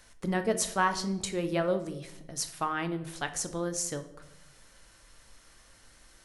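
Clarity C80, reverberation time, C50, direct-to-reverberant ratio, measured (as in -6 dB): 16.0 dB, 0.90 s, 12.5 dB, 8.0 dB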